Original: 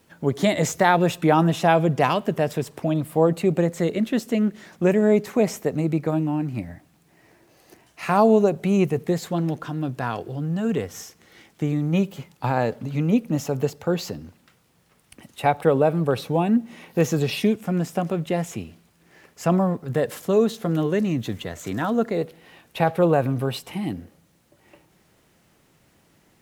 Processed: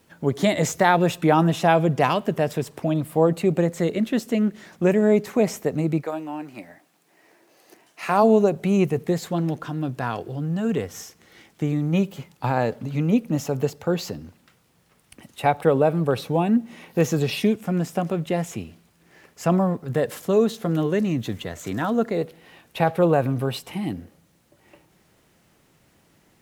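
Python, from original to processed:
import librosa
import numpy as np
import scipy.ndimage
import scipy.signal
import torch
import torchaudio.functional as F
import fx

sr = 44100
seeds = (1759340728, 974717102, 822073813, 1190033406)

y = fx.highpass(x, sr, hz=fx.line((6.01, 530.0), (8.22, 210.0)), slope=12, at=(6.01, 8.22), fade=0.02)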